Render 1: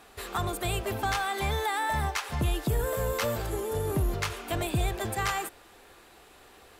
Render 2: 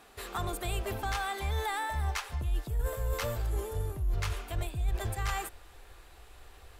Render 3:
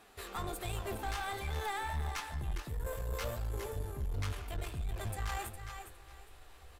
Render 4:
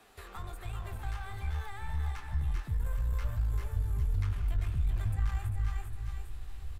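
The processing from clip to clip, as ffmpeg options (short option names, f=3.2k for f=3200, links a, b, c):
-af "asubboost=boost=10:cutoff=69,areverse,acompressor=threshold=-25dB:ratio=6,areverse,volume=-3dB"
-af "aecho=1:1:410|820|1230:0.335|0.077|0.0177,flanger=delay=9.3:depth=6:regen=55:speed=1.4:shape=sinusoidal,aeval=exprs='(tanh(44.7*val(0)+0.4)-tanh(0.4))/44.7':c=same,volume=2dB"
-filter_complex "[0:a]aecho=1:1:390:0.355,acrossover=split=140|880|2100[a][b][c][d];[a]acompressor=threshold=-42dB:ratio=4[e];[b]acompressor=threshold=-54dB:ratio=4[f];[c]acompressor=threshold=-46dB:ratio=4[g];[d]acompressor=threshold=-58dB:ratio=4[h];[e][f][g][h]amix=inputs=4:normalize=0,asubboost=boost=6.5:cutoff=190"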